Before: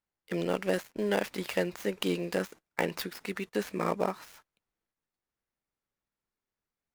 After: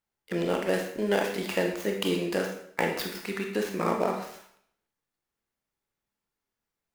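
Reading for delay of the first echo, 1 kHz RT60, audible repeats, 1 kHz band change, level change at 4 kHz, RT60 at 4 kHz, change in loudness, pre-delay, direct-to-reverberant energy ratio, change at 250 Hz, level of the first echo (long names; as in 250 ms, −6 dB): no echo audible, 0.65 s, no echo audible, +4.0 dB, +3.5 dB, 0.60 s, +3.5 dB, 24 ms, 2.0 dB, +3.0 dB, no echo audible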